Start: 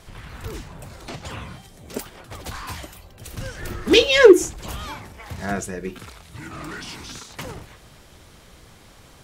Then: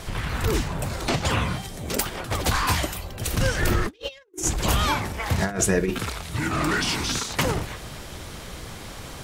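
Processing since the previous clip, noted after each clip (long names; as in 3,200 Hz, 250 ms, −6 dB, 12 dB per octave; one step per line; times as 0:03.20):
compressor whose output falls as the input rises −30 dBFS, ratio −0.5
level +4.5 dB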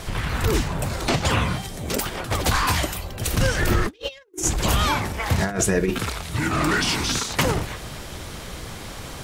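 boost into a limiter +11 dB
level −8.5 dB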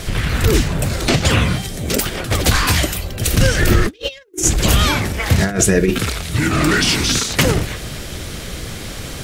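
parametric band 940 Hz −8.5 dB 0.9 octaves
level +7.5 dB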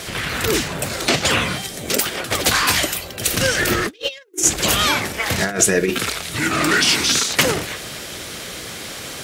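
high-pass filter 460 Hz 6 dB per octave
level +1 dB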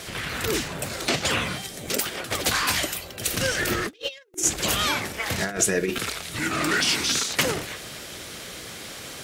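regular buffer underruns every 0.41 s, samples 64, repeat, from 0:00.65
level −6.5 dB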